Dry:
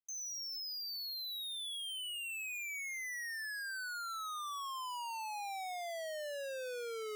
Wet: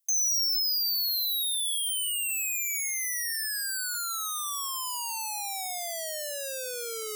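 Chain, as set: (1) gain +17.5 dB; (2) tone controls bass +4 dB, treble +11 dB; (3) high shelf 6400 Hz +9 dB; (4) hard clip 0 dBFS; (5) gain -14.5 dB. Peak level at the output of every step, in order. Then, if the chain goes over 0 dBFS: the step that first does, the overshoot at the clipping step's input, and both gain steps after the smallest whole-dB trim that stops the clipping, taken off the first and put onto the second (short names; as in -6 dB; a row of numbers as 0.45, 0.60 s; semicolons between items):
-24.0, -11.5, -5.5, -5.5, -20.0 dBFS; no overload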